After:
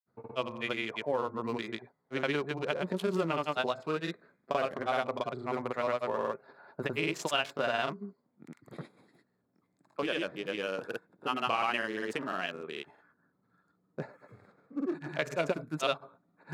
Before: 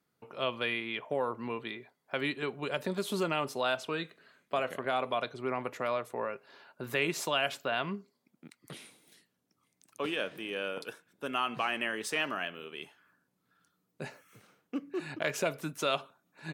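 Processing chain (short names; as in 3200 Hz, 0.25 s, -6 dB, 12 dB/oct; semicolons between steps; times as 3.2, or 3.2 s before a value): Wiener smoothing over 15 samples; in parallel at 0 dB: compressor, threshold -38 dBFS, peak gain reduction 12.5 dB; on the sum: grains, grains 20/s, spray 0.1 s, pitch spread up and down by 0 st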